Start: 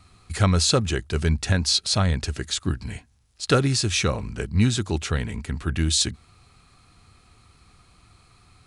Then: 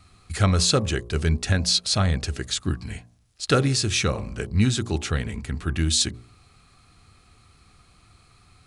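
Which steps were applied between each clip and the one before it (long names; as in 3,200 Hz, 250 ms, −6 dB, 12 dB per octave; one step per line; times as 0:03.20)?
notch filter 950 Hz, Q 13
hum removal 59.36 Hz, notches 20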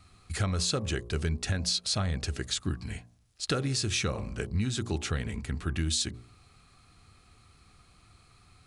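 downward compressor 6 to 1, threshold −22 dBFS, peak gain reduction 8 dB
level −3.5 dB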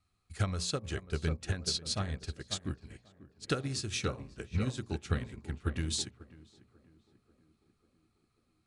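tape delay 542 ms, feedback 70%, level −4.5 dB, low-pass 1,300 Hz
expander for the loud parts 2.5 to 1, over −38 dBFS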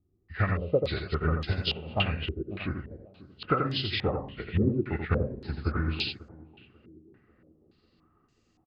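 hearing-aid frequency compression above 1,200 Hz 1.5 to 1
single-tap delay 86 ms −5.5 dB
low-pass on a step sequencer 3.5 Hz 360–6,500 Hz
level +4 dB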